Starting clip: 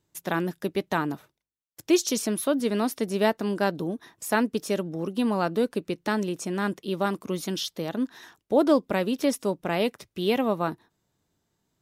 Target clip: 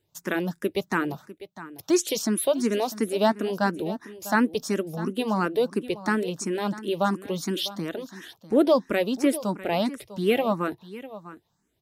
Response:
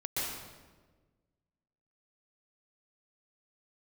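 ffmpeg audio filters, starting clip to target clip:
-filter_complex "[0:a]asplit=2[s0][s1];[s1]aecho=0:1:649:0.158[s2];[s0][s2]amix=inputs=2:normalize=0,asplit=2[s3][s4];[s4]afreqshift=2.9[s5];[s3][s5]amix=inputs=2:normalize=1,volume=1.58"

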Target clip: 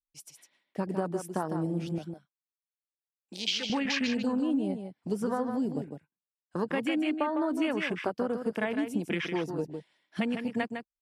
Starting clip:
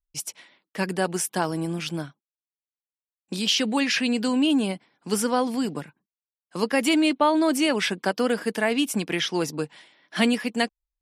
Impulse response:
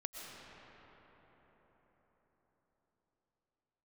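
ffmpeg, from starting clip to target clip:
-filter_complex "[0:a]afwtdn=0.0447,asettb=1/sr,asplit=3[s0][s1][s2];[s0]atrim=end=1.984[s3];[s1]atrim=start=1.98:end=3.7,asetpts=PTS-STARTPTS,afade=t=in:d=0.004:c=qsin,afade=t=out:st=1.716:d=0.004:c=qsin,highpass=f=1100:p=1[s4];[s2]atrim=start=3.696[s5];[s3][s4]acrossfade=d=0.004:c1=hsin:c2=qsin[s6];[s6][s5]acrossfade=d=0.004:c1=qsin:c2=hsin,acompressor=threshold=0.0447:ratio=6,aecho=1:1:155:0.447"

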